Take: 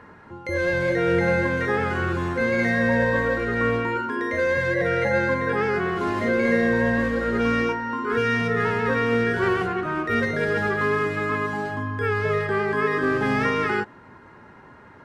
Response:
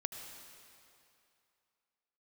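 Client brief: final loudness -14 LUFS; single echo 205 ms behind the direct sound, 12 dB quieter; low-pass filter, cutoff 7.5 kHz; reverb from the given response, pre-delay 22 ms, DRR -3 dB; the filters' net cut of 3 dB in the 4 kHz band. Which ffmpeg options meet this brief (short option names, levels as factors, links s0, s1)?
-filter_complex "[0:a]lowpass=7500,equalizer=f=4000:t=o:g=-4,aecho=1:1:205:0.251,asplit=2[s0][s1];[1:a]atrim=start_sample=2205,adelay=22[s2];[s1][s2]afir=irnorm=-1:irlink=0,volume=1.41[s3];[s0][s3]amix=inputs=2:normalize=0,volume=1.68"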